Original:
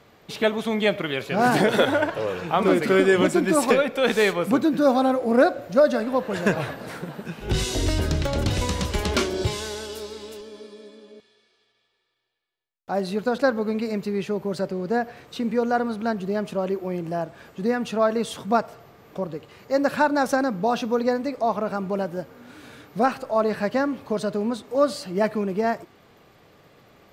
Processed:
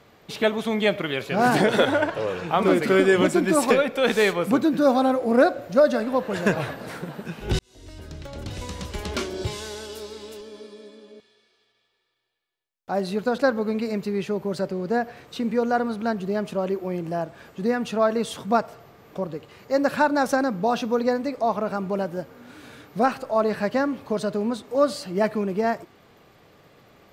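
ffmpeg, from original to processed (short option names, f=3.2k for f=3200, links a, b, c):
-filter_complex "[0:a]asettb=1/sr,asplit=3[a][b][c];[a]atrim=end=1.554[d];[b]atrim=start=1.55:end=2.51,asetpts=PTS-STARTPTS,afade=t=in:d=0.004:c=qsin,afade=t=out:st=0.956:d=0.004:c=qsin,equalizer=f=13k:w=2:g=-7[e];[c]atrim=start=2.506[f];[d][e]acrossfade=d=0.004:c1=hsin:c2=qsin[g];[g][f]acrossfade=d=0.004:c1=qsin:c2=hsin,asplit=2[h][i];[h]atrim=end=7.59,asetpts=PTS-STARTPTS,afade=t=out:st=7.586:d=0.004:c=hsin[j];[i]atrim=start=7.59,asetpts=PTS-STARTPTS,afade=t=in:d=2.98[k];[j][k]concat=n=2:v=0:a=1"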